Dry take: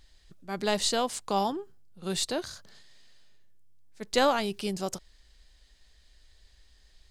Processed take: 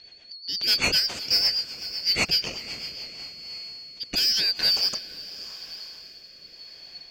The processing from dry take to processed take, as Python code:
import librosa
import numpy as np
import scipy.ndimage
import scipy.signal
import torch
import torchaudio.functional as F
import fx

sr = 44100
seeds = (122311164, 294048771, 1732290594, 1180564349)

p1 = fx.band_shuffle(x, sr, order='4321')
p2 = scipy.signal.sosfilt(scipy.signal.butter(4, 5400.0, 'lowpass', fs=sr, output='sos'), p1)
p3 = fx.high_shelf(p2, sr, hz=2900.0, db=3.5)
p4 = fx.rider(p3, sr, range_db=10, speed_s=0.5)
p5 = p3 + F.gain(torch.from_numpy(p4), -0.5).numpy()
p6 = 10.0 ** (-17.0 / 20.0) * np.tanh(p5 / 10.0 ** (-17.0 / 20.0))
p7 = p6 + fx.echo_diffused(p6, sr, ms=530, feedback_pct=47, wet_db=-12.5, dry=0)
p8 = fx.rotary_switch(p7, sr, hz=8.0, then_hz=0.9, switch_at_s=2.68)
y = F.gain(torch.from_numpy(p8), 3.5).numpy()